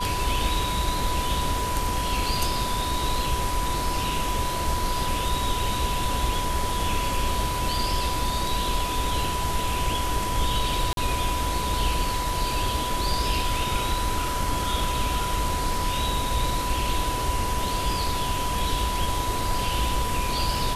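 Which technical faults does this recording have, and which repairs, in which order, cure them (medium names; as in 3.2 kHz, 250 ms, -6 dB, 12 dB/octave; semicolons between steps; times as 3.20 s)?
whine 990 Hz -28 dBFS
10.93–10.97 s: dropout 42 ms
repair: band-stop 990 Hz, Q 30; interpolate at 10.93 s, 42 ms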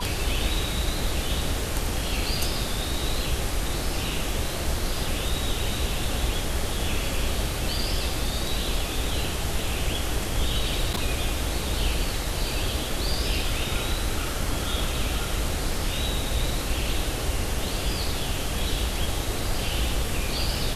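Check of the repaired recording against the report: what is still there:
nothing left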